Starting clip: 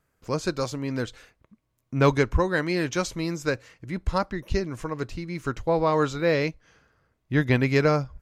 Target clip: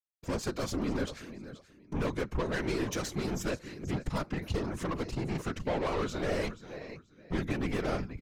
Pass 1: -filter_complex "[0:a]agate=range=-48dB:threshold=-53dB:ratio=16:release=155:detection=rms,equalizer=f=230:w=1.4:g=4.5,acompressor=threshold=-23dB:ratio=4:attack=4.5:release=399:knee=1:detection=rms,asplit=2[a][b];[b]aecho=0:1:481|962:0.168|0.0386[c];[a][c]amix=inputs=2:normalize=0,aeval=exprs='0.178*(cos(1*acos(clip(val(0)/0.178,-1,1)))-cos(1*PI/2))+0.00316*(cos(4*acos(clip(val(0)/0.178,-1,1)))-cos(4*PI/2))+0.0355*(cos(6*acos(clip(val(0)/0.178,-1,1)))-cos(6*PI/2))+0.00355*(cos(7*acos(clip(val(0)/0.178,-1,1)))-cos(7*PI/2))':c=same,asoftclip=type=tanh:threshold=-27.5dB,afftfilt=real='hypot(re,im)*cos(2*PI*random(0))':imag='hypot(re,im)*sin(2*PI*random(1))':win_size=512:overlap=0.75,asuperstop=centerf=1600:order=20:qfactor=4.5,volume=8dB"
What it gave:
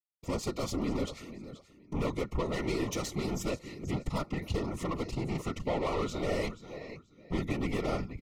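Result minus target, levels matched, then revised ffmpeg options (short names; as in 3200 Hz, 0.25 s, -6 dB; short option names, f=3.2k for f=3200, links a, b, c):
2000 Hz band -3.0 dB
-filter_complex "[0:a]agate=range=-48dB:threshold=-53dB:ratio=16:release=155:detection=rms,equalizer=f=230:w=1.4:g=4.5,acompressor=threshold=-23dB:ratio=4:attack=4.5:release=399:knee=1:detection=rms,asplit=2[a][b];[b]aecho=0:1:481|962:0.168|0.0386[c];[a][c]amix=inputs=2:normalize=0,aeval=exprs='0.178*(cos(1*acos(clip(val(0)/0.178,-1,1)))-cos(1*PI/2))+0.00316*(cos(4*acos(clip(val(0)/0.178,-1,1)))-cos(4*PI/2))+0.0355*(cos(6*acos(clip(val(0)/0.178,-1,1)))-cos(6*PI/2))+0.00355*(cos(7*acos(clip(val(0)/0.178,-1,1)))-cos(7*PI/2))':c=same,asoftclip=type=tanh:threshold=-27.5dB,afftfilt=real='hypot(re,im)*cos(2*PI*random(0))':imag='hypot(re,im)*sin(2*PI*random(1))':win_size=512:overlap=0.75,volume=8dB"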